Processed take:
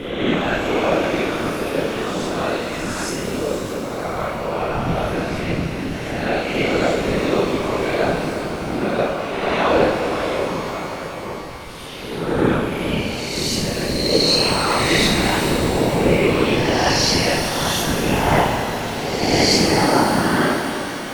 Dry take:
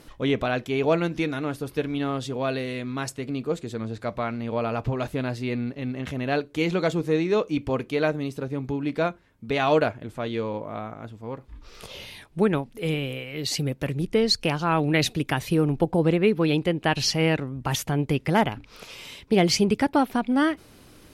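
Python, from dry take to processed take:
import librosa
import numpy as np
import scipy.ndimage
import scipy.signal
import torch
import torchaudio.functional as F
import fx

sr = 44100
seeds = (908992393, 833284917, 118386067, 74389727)

y = fx.spec_swells(x, sr, rise_s=1.35)
y = fx.room_flutter(y, sr, wall_m=5.6, rt60_s=0.61)
y = fx.whisperise(y, sr, seeds[0])
y = fx.rev_shimmer(y, sr, seeds[1], rt60_s=3.9, semitones=12, shimmer_db=-8, drr_db=4.0)
y = F.gain(torch.from_numpy(y), -1.5).numpy()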